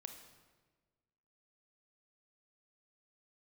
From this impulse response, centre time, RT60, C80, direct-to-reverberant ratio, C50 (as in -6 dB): 24 ms, 1.4 s, 9.0 dB, 5.5 dB, 7.0 dB